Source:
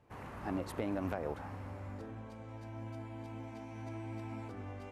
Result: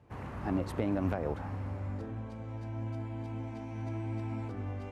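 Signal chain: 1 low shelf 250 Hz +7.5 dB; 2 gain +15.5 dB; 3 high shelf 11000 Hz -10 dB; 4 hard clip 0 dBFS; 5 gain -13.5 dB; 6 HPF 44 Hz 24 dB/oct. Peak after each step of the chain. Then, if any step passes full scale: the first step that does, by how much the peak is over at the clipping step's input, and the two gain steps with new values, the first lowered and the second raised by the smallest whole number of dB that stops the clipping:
-21.0, -5.5, -5.5, -5.5, -19.0, -18.0 dBFS; no overload

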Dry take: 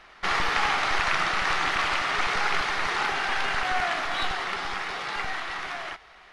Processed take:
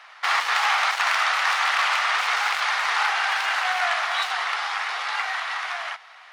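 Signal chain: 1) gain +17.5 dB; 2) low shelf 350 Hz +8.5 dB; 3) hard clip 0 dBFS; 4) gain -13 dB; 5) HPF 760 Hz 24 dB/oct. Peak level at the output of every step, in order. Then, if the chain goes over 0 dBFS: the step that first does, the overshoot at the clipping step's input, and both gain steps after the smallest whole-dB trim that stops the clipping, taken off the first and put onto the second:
+8.5, +9.5, 0.0, -13.0, -7.0 dBFS; step 1, 9.5 dB; step 1 +7.5 dB, step 4 -3 dB

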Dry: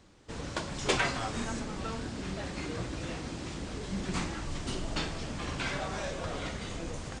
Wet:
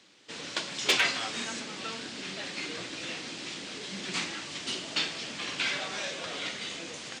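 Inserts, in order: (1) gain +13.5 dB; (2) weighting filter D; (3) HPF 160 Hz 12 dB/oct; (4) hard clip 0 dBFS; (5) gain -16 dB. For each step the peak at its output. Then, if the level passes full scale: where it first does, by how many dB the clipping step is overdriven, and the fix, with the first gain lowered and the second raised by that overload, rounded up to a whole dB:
+0.5, +5.5, +5.5, 0.0, -16.0 dBFS; step 1, 5.5 dB; step 1 +7.5 dB, step 5 -10 dB

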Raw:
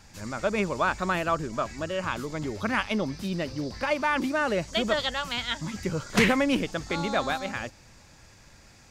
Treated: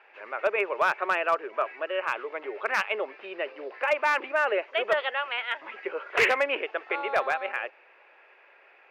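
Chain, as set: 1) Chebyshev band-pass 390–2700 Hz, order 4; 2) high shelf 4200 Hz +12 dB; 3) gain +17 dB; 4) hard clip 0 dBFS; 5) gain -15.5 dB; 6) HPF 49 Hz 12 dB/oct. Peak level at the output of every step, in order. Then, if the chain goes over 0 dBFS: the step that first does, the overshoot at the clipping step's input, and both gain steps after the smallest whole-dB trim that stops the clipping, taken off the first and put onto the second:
-12.0, -10.0, +7.0, 0.0, -15.5, -14.5 dBFS; step 3, 7.0 dB; step 3 +10 dB, step 5 -8.5 dB

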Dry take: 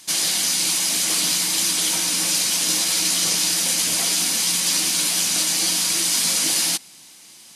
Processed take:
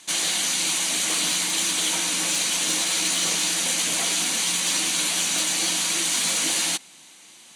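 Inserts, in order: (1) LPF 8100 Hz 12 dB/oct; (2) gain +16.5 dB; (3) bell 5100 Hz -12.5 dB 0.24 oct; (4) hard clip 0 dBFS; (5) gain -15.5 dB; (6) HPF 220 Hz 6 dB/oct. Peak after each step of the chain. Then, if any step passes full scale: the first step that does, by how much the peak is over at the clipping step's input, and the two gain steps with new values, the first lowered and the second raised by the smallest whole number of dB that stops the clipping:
-8.0, +8.5, +6.0, 0.0, -15.5, -14.0 dBFS; step 2, 6.0 dB; step 2 +10.5 dB, step 5 -9.5 dB

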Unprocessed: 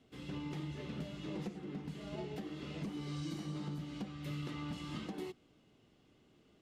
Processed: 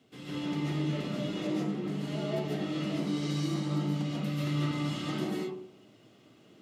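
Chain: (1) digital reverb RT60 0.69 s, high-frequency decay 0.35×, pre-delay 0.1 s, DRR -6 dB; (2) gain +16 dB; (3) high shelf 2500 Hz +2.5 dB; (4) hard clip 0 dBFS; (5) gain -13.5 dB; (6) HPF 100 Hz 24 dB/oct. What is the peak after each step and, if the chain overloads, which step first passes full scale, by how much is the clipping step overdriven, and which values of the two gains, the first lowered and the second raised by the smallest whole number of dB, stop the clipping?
-21.5, -5.5, -5.5, -5.5, -19.0, -19.5 dBFS; no overload

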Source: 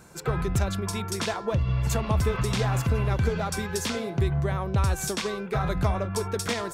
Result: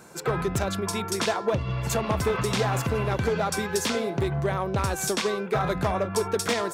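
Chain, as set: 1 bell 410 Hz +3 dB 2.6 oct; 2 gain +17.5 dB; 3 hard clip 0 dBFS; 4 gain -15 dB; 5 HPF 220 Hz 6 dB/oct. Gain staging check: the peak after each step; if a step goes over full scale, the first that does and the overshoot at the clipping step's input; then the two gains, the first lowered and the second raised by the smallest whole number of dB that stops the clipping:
-10.0, +7.5, 0.0, -15.0, -12.0 dBFS; step 2, 7.5 dB; step 2 +9.5 dB, step 4 -7 dB

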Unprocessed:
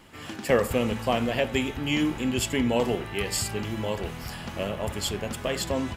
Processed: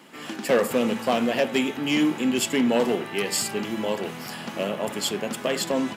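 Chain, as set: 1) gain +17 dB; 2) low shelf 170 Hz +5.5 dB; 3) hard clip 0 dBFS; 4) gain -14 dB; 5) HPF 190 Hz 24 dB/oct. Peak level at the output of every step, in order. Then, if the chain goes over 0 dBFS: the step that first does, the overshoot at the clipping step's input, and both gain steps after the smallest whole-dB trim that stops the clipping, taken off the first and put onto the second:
+8.0, +9.0, 0.0, -14.0, -8.5 dBFS; step 1, 9.0 dB; step 1 +8 dB, step 4 -5 dB

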